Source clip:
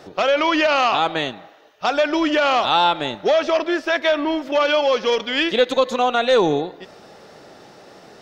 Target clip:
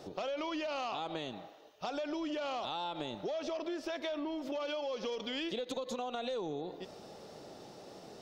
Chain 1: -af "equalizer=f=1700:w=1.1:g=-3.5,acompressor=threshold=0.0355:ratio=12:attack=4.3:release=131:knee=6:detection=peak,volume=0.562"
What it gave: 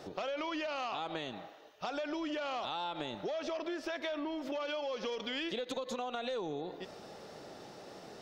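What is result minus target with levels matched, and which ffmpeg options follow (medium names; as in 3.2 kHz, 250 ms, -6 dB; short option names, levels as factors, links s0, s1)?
2 kHz band +3.0 dB
-af "equalizer=f=1700:w=1.1:g=-9.5,acompressor=threshold=0.0355:ratio=12:attack=4.3:release=131:knee=6:detection=peak,volume=0.562"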